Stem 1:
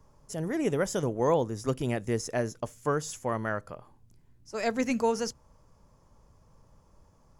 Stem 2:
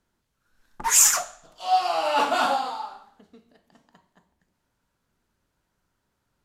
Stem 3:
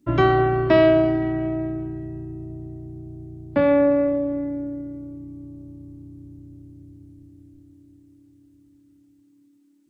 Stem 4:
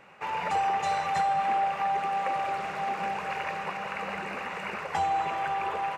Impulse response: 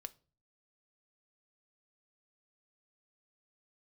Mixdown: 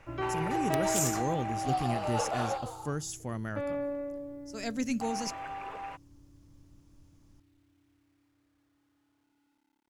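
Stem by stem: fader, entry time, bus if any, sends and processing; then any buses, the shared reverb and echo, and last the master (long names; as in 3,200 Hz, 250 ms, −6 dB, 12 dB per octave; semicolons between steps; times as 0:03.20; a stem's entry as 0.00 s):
0.0 dB, 0.00 s, no send, graphic EQ with 10 bands 500 Hz −9 dB, 1,000 Hz −10 dB, 2,000 Hz −5 dB
−15.5 dB, 0.00 s, no send, high-pass with resonance 470 Hz, resonance Q 4.9
−16.0 dB, 0.00 s, no send, low-pass that shuts in the quiet parts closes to 1,900 Hz; parametric band 180 Hz −11.5 dB 0.62 octaves; bit reduction 10 bits
−4.0 dB, 0.00 s, muted 0:02.58–0:05.01, no send, automatic ducking −6 dB, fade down 1.10 s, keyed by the first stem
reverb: not used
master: wrap-around overflow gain 17 dB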